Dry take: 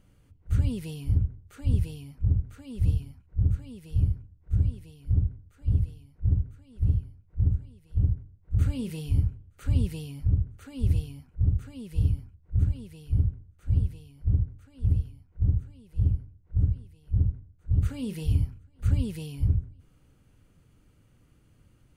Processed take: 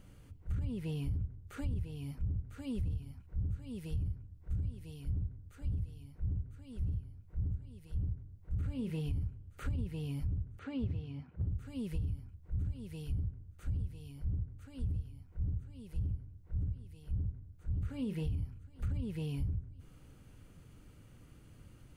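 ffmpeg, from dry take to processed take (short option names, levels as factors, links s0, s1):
-filter_complex "[0:a]asettb=1/sr,asplit=3[s0][s1][s2];[s0]atrim=end=10.594[s3];[s1]atrim=start=10.59:end=11.47,asetpts=PTS-STARTPTS,afade=t=in:d=0.004:c=qsin,afade=t=out:st=0.876:d=0.004:c=qsin,highpass=110,lowpass=2800[s4];[s2]atrim=start=11.466[s5];[s3][s4]acrossfade=d=0.004:c1=hsin:c2=qsin[s6];[s6][s5]acrossfade=d=0.004:c1=qsin:c2=hsin,acrossover=split=2800[s7][s8];[s8]acompressor=threshold=0.001:ratio=4:attack=1:release=60[s9];[s7][s9]amix=inputs=2:normalize=0,alimiter=limit=0.1:level=0:latency=1:release=19,acompressor=threshold=0.0126:ratio=5,volume=1.58"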